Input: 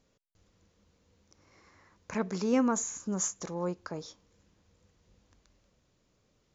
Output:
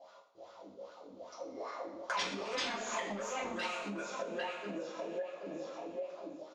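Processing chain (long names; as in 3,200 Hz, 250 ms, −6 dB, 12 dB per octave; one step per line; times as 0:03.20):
loose part that buzzes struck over −39 dBFS, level −22 dBFS
repeating echo 772 ms, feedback 27%, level −5 dB
LFO wah 2.5 Hz 250–1,400 Hz, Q 9.5
graphic EQ with 15 bands 630 Hz +12 dB, 1,600 Hz −9 dB, 4,000 Hz +8 dB
sine wavefolder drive 17 dB, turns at −25 dBFS
coupled-rooms reverb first 0.47 s, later 2.3 s, from −18 dB, DRR −10 dB
downward compressor 12 to 1, threshold −34 dBFS, peak gain reduction 21.5 dB
spectral tilt +2.5 dB per octave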